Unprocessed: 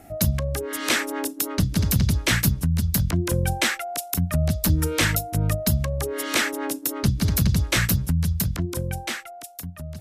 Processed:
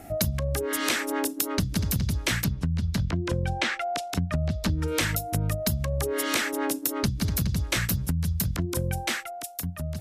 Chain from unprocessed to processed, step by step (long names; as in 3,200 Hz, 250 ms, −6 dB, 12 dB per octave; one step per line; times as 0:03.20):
0:02.44–0:04.88: low-pass filter 4,500 Hz 12 dB per octave
downward compressor, threshold −26 dBFS, peak gain reduction 11 dB
level +3 dB